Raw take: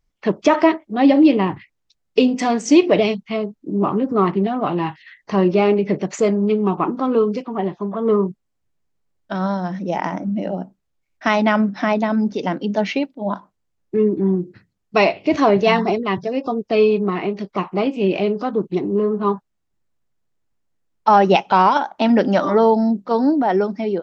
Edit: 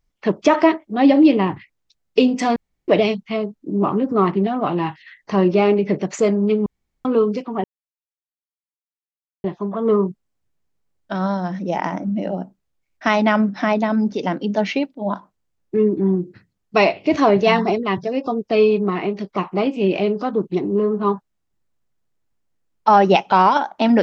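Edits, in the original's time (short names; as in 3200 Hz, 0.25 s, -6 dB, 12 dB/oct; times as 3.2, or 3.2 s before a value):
2.56–2.88 room tone
6.66–7.05 room tone
7.64 insert silence 1.80 s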